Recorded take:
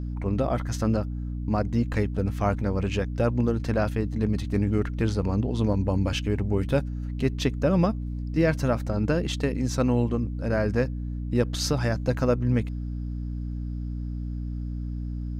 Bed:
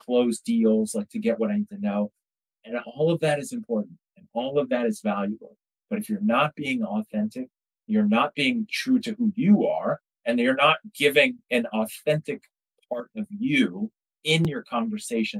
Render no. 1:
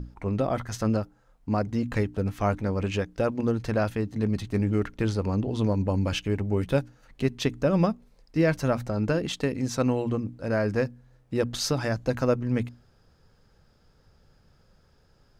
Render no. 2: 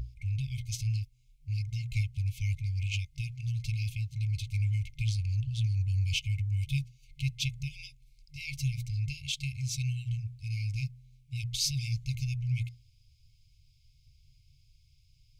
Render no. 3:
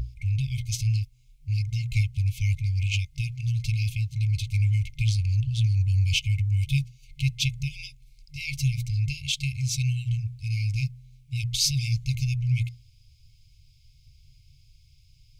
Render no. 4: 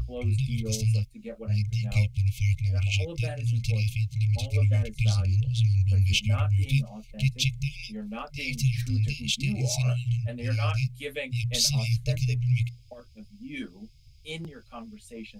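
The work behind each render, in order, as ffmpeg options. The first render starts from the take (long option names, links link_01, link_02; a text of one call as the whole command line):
ffmpeg -i in.wav -af "bandreject=frequency=60:width_type=h:width=6,bandreject=frequency=120:width_type=h:width=6,bandreject=frequency=180:width_type=h:width=6,bandreject=frequency=240:width_type=h:width=6,bandreject=frequency=300:width_type=h:width=6" out.wav
ffmpeg -i in.wav -af "afftfilt=real='re*(1-between(b*sr/4096,140,2100))':imag='im*(1-between(b*sr/4096,140,2100))':win_size=4096:overlap=0.75" out.wav
ffmpeg -i in.wav -af "volume=6.5dB" out.wav
ffmpeg -i in.wav -i bed.wav -filter_complex "[1:a]volume=-15.5dB[link_01];[0:a][link_01]amix=inputs=2:normalize=0" out.wav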